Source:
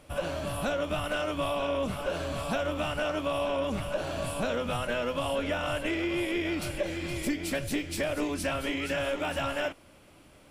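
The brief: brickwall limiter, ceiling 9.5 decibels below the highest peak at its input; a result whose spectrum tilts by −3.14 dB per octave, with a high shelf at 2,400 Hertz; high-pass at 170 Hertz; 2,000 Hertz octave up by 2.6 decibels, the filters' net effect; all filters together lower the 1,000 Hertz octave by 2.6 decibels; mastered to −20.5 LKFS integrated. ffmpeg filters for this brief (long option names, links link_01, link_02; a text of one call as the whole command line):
ffmpeg -i in.wav -af "highpass=170,equalizer=frequency=1000:width_type=o:gain=-5.5,equalizer=frequency=2000:width_type=o:gain=3,highshelf=frequency=2400:gain=4,volume=14dB,alimiter=limit=-12dB:level=0:latency=1" out.wav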